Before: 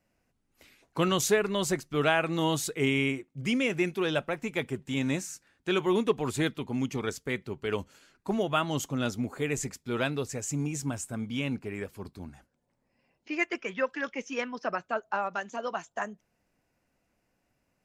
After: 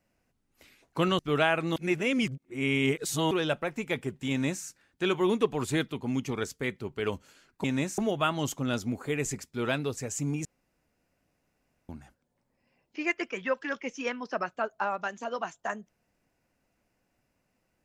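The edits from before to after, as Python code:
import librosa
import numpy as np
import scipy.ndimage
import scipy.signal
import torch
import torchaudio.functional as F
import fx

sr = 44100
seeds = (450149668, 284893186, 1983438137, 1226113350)

y = fx.edit(x, sr, fx.cut(start_s=1.19, length_s=0.66),
    fx.reverse_span(start_s=2.42, length_s=1.55),
    fx.duplicate(start_s=4.96, length_s=0.34, to_s=8.3),
    fx.room_tone_fill(start_s=10.77, length_s=1.44), tone=tone)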